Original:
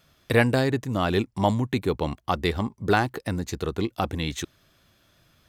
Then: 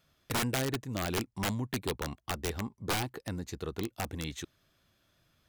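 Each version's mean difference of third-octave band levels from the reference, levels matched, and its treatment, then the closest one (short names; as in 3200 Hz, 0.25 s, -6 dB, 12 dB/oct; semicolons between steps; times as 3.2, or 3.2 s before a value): 5.0 dB: wrapped overs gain 15.5 dB; gain -9 dB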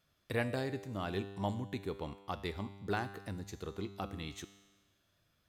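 3.0 dB: resonator 99 Hz, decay 1.3 s, harmonics all, mix 70%; gain -5 dB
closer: second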